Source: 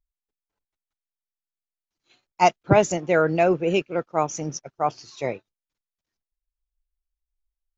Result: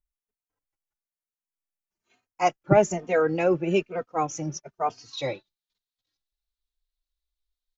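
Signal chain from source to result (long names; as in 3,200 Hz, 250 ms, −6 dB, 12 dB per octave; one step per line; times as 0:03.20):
parametric band 3,900 Hz −11 dB 0.65 octaves, from 0:02.99 −3 dB, from 0:05.13 +15 dB
barber-pole flanger 3 ms +1.1 Hz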